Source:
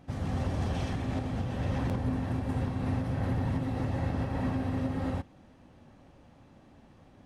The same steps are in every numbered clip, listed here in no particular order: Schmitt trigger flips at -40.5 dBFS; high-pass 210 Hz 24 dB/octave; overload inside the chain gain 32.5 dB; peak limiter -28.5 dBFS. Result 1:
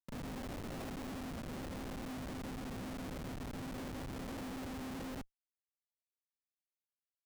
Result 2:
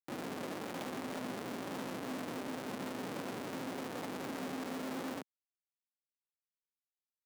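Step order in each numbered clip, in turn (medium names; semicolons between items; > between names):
peak limiter > overload inside the chain > high-pass > Schmitt trigger; Schmitt trigger > high-pass > peak limiter > overload inside the chain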